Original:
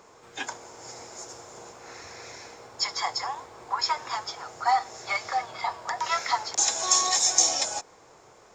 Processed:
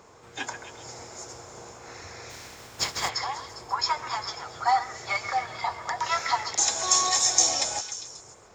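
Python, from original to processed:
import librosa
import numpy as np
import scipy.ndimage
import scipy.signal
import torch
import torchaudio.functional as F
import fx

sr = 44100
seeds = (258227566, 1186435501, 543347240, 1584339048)

y = fx.spec_flatten(x, sr, power=0.5, at=(2.29, 3.08), fade=0.02)
y = fx.peak_eq(y, sr, hz=75.0, db=8.5, octaves=2.2)
y = fx.echo_stepped(y, sr, ms=134, hz=1600.0, octaves=0.7, feedback_pct=70, wet_db=-7)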